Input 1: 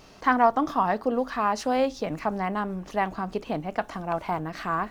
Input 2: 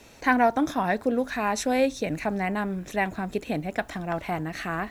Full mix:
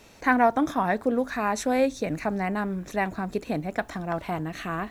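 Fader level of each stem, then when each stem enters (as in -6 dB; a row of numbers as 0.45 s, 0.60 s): -10.0 dB, -2.0 dB; 0.00 s, 0.00 s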